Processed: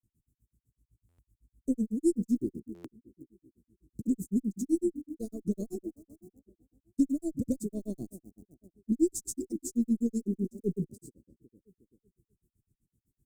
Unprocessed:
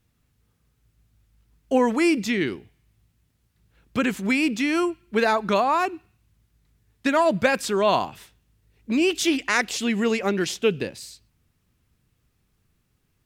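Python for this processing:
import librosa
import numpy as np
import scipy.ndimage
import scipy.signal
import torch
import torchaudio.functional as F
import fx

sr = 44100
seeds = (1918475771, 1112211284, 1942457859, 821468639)

p1 = x + fx.echo_bbd(x, sr, ms=341, stages=2048, feedback_pct=39, wet_db=-13.5, dry=0)
p2 = fx.granulator(p1, sr, seeds[0], grain_ms=100.0, per_s=7.9, spray_ms=100.0, spread_st=0)
p3 = fx.cheby_harmonics(p2, sr, harmonics=(5, 8), levels_db=(-28, -30), full_scale_db=-6.0)
p4 = np.where(np.abs(p3) >= 10.0 ** (-38.0 / 20.0), p3, 0.0)
p5 = p3 + F.gain(torch.from_numpy(p4), -8.5).numpy()
p6 = scipy.signal.sosfilt(scipy.signal.ellip(3, 1.0, 50, [330.0, 7700.0], 'bandstop', fs=sr, output='sos'), p5)
p7 = fx.buffer_glitch(p6, sr, at_s=(1.08, 2.74), block=512, repeats=8)
y = F.gain(torch.from_numpy(p7), -3.0).numpy()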